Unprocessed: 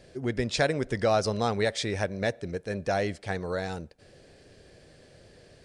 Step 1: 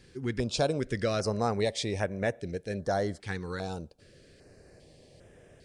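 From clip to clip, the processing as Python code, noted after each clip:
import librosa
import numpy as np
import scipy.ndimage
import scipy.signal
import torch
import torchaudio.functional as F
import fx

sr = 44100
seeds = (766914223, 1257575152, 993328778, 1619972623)

y = fx.filter_held_notch(x, sr, hz=2.5, low_hz=630.0, high_hz=4400.0)
y = y * 10.0 ** (-1.0 / 20.0)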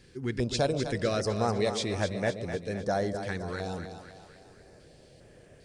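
y = fx.echo_split(x, sr, split_hz=550.0, low_ms=131, high_ms=254, feedback_pct=52, wet_db=-8.0)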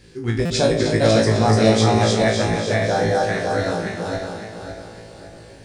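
y = fx.reverse_delay_fb(x, sr, ms=278, feedback_pct=60, wet_db=-1)
y = fx.room_flutter(y, sr, wall_m=3.1, rt60_s=0.35)
y = fx.buffer_glitch(y, sr, at_s=(0.45,), block=256, repeats=8)
y = y * 10.0 ** (6.0 / 20.0)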